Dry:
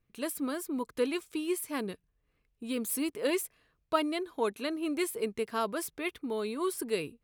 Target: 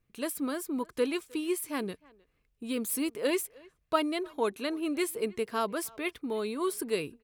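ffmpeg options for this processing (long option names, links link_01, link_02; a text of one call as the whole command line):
ffmpeg -i in.wav -filter_complex "[0:a]asplit=2[link_01][link_02];[link_02]adelay=310,highpass=300,lowpass=3400,asoftclip=type=hard:threshold=-22.5dB,volume=-24dB[link_03];[link_01][link_03]amix=inputs=2:normalize=0,volume=1dB" out.wav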